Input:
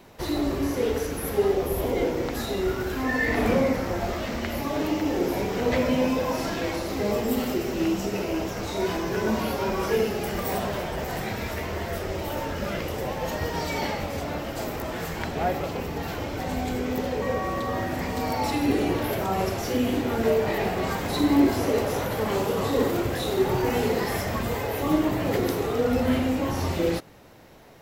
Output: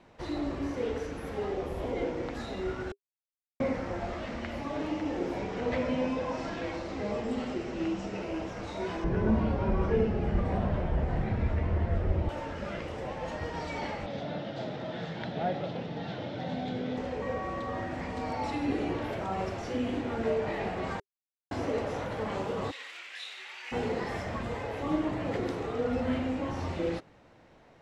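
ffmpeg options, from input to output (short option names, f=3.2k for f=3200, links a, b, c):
-filter_complex "[0:a]asettb=1/sr,asplit=3[a][b][c];[a]atrim=end=5.384[d];[b]atrim=start=5.38:end=8.22,asetpts=PTS-STARTPTS,afade=t=in:d=0.004:c=qsin,afade=t=out:st=2.836:d=0.004:c=qsin,lowpass=f=8.6k:w=0.5412,lowpass=f=8.6k:w=1.3066[e];[c]atrim=start=8.216[f];[d][e]acrossfade=d=0.004:c1=hsin:c2=qsin[g];[g][f]acrossfade=d=0.004:c1=qsin:c2=hsin,asettb=1/sr,asplit=3[h][i][j];[h]atrim=end=9.044[k];[i]atrim=start=9.04:end=12.29,asetpts=PTS-STARTPTS,afade=t=in:d=0.004:c=qsin,afade=t=out:st=3.246:d=0.004:c=qsin,aemphasis=mode=reproduction:type=riaa[l];[j]atrim=start=12.286[m];[k][l]acrossfade=d=0.004:c1=hsin:c2=qsin[n];[n][m]acrossfade=d=0.004:c1=qsin:c2=hsin,asettb=1/sr,asplit=3[o][p][q];[o]atrim=end=14.064[r];[p]atrim=start=14.06:end=16.97,asetpts=PTS-STARTPTS,afade=t=in:d=0.004:c=qsin,afade=t=out:st=2.906:d=0.004:c=qsin,highpass=f=110:w=0.5412,highpass=f=110:w=1.3066,equalizer=f=130:t=q:w=4:g=8,equalizer=f=190:t=q:w=4:g=7,equalizer=f=610:t=q:w=4:g=4,equalizer=f=1.1k:t=q:w=4:g=-7,equalizer=f=2.4k:t=q:w=4:g=-4,equalizer=f=3.6k:t=q:w=4:g=10,lowpass=f=5.7k:w=0.5412,lowpass=f=5.7k:w=1.3066[s];[q]atrim=start=16.966[t];[r][s]acrossfade=d=0.004:c1=hsin:c2=qsin[u];[u][t]acrossfade=d=0.004:c1=qsin:c2=hsin,asplit=3[v][w][x];[v]afade=t=out:st=22.7:d=0.02[y];[w]highpass=f=2.4k:t=q:w=2,afade=t=in:st=22.7:d=0.02,afade=t=out:st=23.71:d=0.02[z];[x]afade=t=in:st=23.71:d=0.02[aa];[y][z][aa]amix=inputs=3:normalize=0,asplit=5[ab][ac][ad][ae][af];[ab]atrim=end=2.92,asetpts=PTS-STARTPTS,afade=t=out:st=2.916:d=0.004:c=hsin[ag];[ac]atrim=start=2.92:end=3.6,asetpts=PTS-STARTPTS,volume=0[ah];[ad]atrim=start=3.6:end=21,asetpts=PTS-STARTPTS,afade=t=in:d=0.004:c=hsin,afade=t=out:st=17.396:d=0.004:c=hsin[ai];[ae]atrim=start=21:end=21.51,asetpts=PTS-STARTPTS,volume=0[aj];[af]atrim=start=21.51,asetpts=PTS-STARTPTS,afade=t=in:d=0.004:c=hsin[ak];[ag][ah][ai][aj][ak]concat=n=5:v=0:a=1,lowpass=f=8.9k:w=0.5412,lowpass=f=8.9k:w=1.3066,bass=f=250:g=-1,treble=f=4k:g=-9,bandreject=f=400:w=13,volume=-6.5dB"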